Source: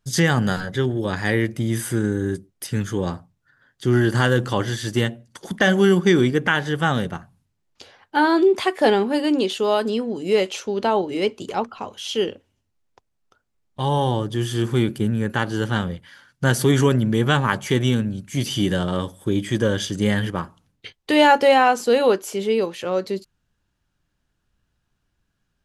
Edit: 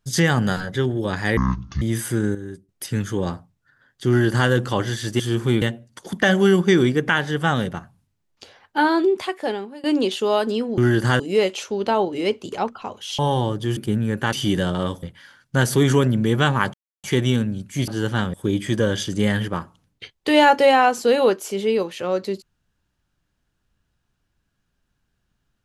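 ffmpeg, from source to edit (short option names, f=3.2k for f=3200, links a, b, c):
-filter_complex "[0:a]asplit=17[a][b][c][d][e][f][g][h][i][j][k][l][m][n][o][p][q];[a]atrim=end=1.374[r];[b]atrim=start=1.37:end=1.62,asetpts=PTS-STARTPTS,asetrate=24696,aresample=44100,atrim=end_sample=19687,asetpts=PTS-STARTPTS[s];[c]atrim=start=1.616:end=2.152[t];[d]atrim=start=2.148:end=2.492,asetpts=PTS-STARTPTS,volume=-10dB[u];[e]atrim=start=2.488:end=5.002[v];[f]atrim=start=14.468:end=14.892[w];[g]atrim=start=4.998:end=9.22,asetpts=PTS-STARTPTS,afade=t=out:st=3.162:d=1.06:silence=0.0707946[x];[h]atrim=start=9.22:end=10.162,asetpts=PTS-STARTPTS,afade=t=in:d=0.004:c=hsin:silence=0.0707946[y];[i]atrim=start=3.878:end=4.302[z];[j]atrim=start=10.158:end=12.152[aa];[k]atrim=start=13.888:end=14.472[ab];[l]atrim=start=14.888:end=15.452[ac];[m]atrim=start=18.458:end=19.162[ad];[n]atrim=start=15.908:end=17.62,asetpts=PTS-STARTPTS,afade=t=out:st=1.708:d=0.004:c=hsin,apad=pad_dur=0.3[ae];[o]atrim=start=17.62:end=18.462,asetpts=PTS-STARTPTS,afade=t=in:d=0.004:c=hsin[af];[p]atrim=start=15.448:end=15.912[ag];[q]atrim=start=19.158[ah];[r][s]acrossfade=d=0.004:c1=hsin:c2=hsin[ai];[ai][t]acrossfade=d=0.004:c1=hsin:c2=hsin[aj];[aj][u]acrossfade=d=0.004:c1=hsin:c2=hsin[ak];[ak][v]acrossfade=d=0.004:c1=hsin:c2=hsin[al];[al][w]acrossfade=d=0.004:c1=hsin:c2=hsin[am];[x][y]concat=n=2:v=0:a=1[an];[am][an]acrossfade=d=0.004:c1=hsin:c2=hsin[ao];[ao][z]acrossfade=d=0.004:c1=hsin:c2=hsin[ap];[ap][aa]acrossfade=d=0.004:c1=hsin:c2=hsin[aq];[aq][ab]acrossfade=d=0.004:c1=hsin:c2=hsin[ar];[ar][ac]acrossfade=d=0.004:c1=hsin:c2=hsin[as];[as][ad]acrossfade=d=0.004:c1=hsin:c2=hsin[at];[ae][af]concat=n=2:v=0:a=1[au];[at][au]acrossfade=d=0.004:c1=hsin:c2=hsin[av];[av][ag]acrossfade=d=0.004:c1=hsin:c2=hsin[aw];[aw][ah]acrossfade=d=0.004:c1=hsin:c2=hsin"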